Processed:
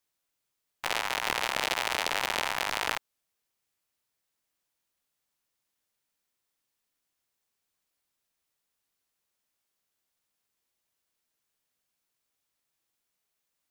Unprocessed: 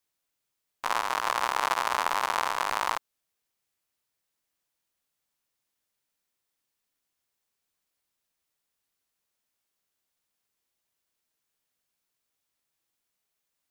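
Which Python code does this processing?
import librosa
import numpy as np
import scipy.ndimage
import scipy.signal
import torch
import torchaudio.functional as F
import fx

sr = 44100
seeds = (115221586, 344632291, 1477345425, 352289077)

y = fx.doppler_dist(x, sr, depth_ms=0.92)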